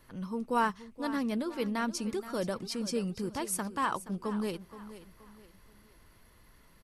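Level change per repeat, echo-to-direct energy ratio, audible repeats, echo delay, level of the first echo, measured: -9.0 dB, -14.0 dB, 3, 0.474 s, -14.5 dB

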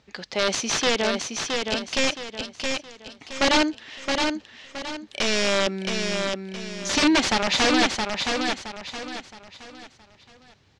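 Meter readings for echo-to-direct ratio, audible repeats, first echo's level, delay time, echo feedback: -4.0 dB, 4, -4.5 dB, 0.669 s, 35%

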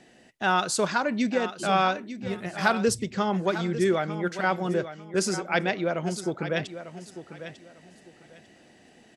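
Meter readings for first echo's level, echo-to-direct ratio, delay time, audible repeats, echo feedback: -12.0 dB, -12.0 dB, 0.898 s, 2, 23%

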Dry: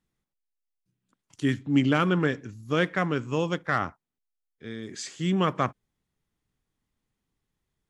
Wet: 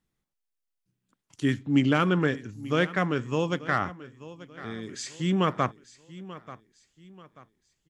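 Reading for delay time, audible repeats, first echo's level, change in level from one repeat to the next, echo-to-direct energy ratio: 0.886 s, 3, -17.0 dB, -8.5 dB, -16.5 dB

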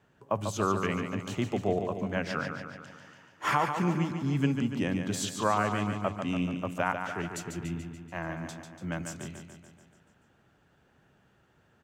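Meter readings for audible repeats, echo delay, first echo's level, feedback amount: 7, 0.144 s, -7.0 dB, 59%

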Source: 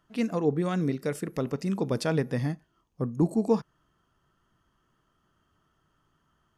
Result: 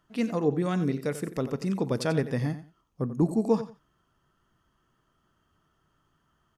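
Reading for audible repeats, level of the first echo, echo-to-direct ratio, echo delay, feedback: 2, -13.0 dB, -13.0 dB, 89 ms, 20%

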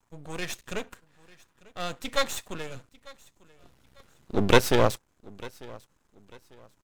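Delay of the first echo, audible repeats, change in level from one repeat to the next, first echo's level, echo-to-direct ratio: 0.896 s, 2, -10.0 dB, -22.0 dB, -21.5 dB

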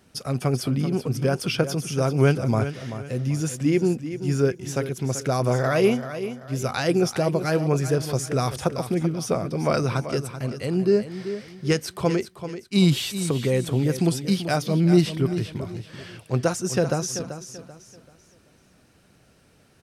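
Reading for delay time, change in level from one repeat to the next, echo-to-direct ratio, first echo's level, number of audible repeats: 0.386 s, -9.5 dB, -10.5 dB, -11.0 dB, 3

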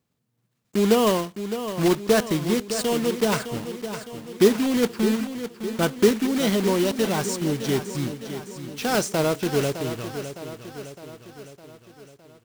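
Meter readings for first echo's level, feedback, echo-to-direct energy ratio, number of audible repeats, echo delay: -10.5 dB, 56%, -9.0 dB, 5, 0.61 s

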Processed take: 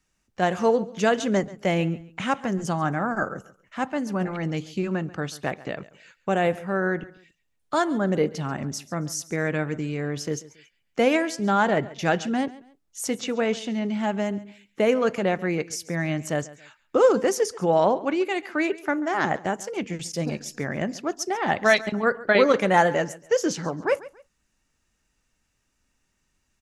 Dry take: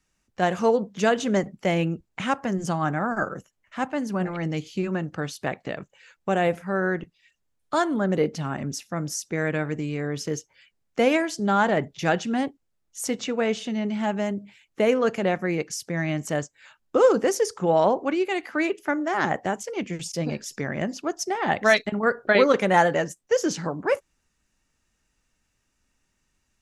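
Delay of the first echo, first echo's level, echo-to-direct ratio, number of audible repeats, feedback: 0.138 s, -19.0 dB, -18.5 dB, 2, 29%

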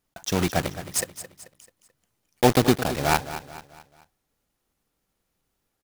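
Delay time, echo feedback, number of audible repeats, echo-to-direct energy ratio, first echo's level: 0.218 s, 43%, 4, -12.0 dB, -13.0 dB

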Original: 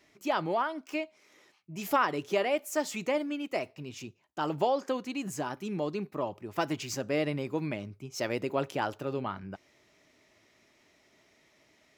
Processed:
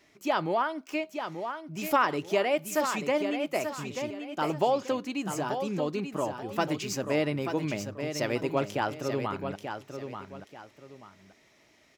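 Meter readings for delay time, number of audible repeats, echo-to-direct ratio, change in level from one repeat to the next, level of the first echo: 0.885 s, 2, -7.0 dB, -10.5 dB, -7.5 dB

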